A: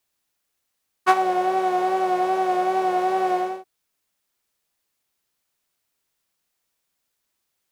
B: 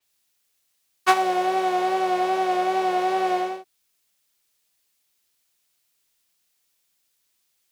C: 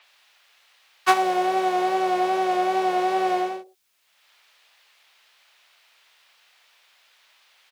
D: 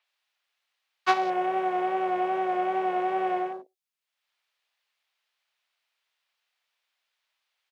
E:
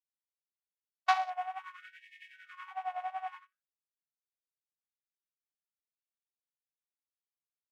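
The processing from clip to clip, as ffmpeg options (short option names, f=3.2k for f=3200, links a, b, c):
-filter_complex "[0:a]acrossover=split=290|1300|2100[a][b][c][d];[d]acontrast=90[e];[a][b][c][e]amix=inputs=4:normalize=0,adynamicequalizer=threshold=0.00398:dfrequency=5500:dqfactor=0.7:tfrequency=5500:tqfactor=0.7:attack=5:release=100:ratio=0.375:range=3:mode=cutabove:tftype=highshelf,volume=-1dB"
-filter_complex "[0:a]acrossover=split=440|470|3800[a][b][c][d];[b]aecho=1:1:107:0.668[e];[c]acompressor=mode=upward:threshold=-41dB:ratio=2.5[f];[a][e][f][d]amix=inputs=4:normalize=0"
-af "afwtdn=0.0158,volume=-4.5dB"
-af "agate=range=-33dB:threshold=-25dB:ratio=16:detection=peak,afftfilt=real='re*gte(b*sr/1024,580*pow(1700/580,0.5+0.5*sin(2*PI*0.58*pts/sr)))':imag='im*gte(b*sr/1024,580*pow(1700/580,0.5+0.5*sin(2*PI*0.58*pts/sr)))':win_size=1024:overlap=0.75,volume=-3.5dB"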